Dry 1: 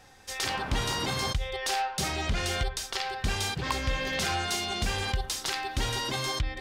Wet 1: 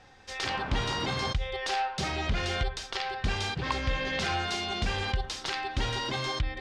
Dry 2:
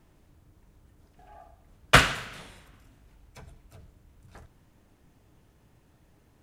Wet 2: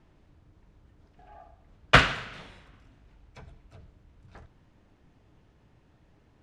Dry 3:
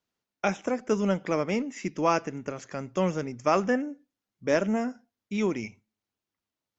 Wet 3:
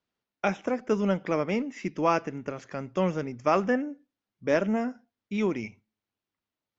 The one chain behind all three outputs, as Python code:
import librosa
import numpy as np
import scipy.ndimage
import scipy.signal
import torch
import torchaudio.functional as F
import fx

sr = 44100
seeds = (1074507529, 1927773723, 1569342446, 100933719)

y = scipy.signal.sosfilt(scipy.signal.butter(2, 4600.0, 'lowpass', fs=sr, output='sos'), x)